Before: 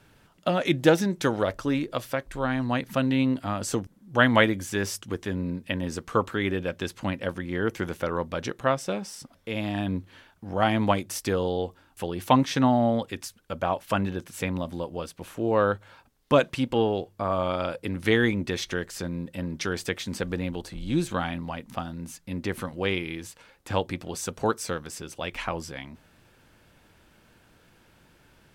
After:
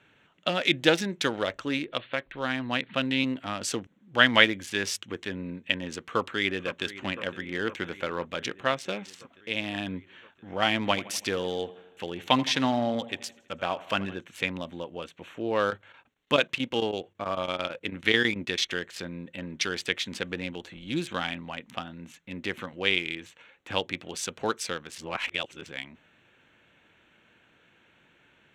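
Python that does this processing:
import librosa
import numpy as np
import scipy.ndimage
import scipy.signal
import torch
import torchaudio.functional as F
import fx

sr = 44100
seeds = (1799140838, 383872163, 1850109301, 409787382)

y = fx.steep_lowpass(x, sr, hz=4400.0, slope=96, at=(1.79, 3.24))
y = fx.echo_throw(y, sr, start_s=5.98, length_s=0.87, ms=510, feedback_pct=75, wet_db=-14.5)
y = fx.echo_feedback(y, sr, ms=82, feedback_pct=60, wet_db=-17.5, at=(10.84, 14.14), fade=0.02)
y = fx.chopper(y, sr, hz=9.1, depth_pct=65, duty_pct=85, at=(15.61, 18.72))
y = fx.edit(y, sr, fx.reverse_span(start_s=24.98, length_s=0.68), tone=tone)
y = fx.wiener(y, sr, points=9)
y = fx.weighting(y, sr, curve='D')
y = y * 10.0 ** (-3.5 / 20.0)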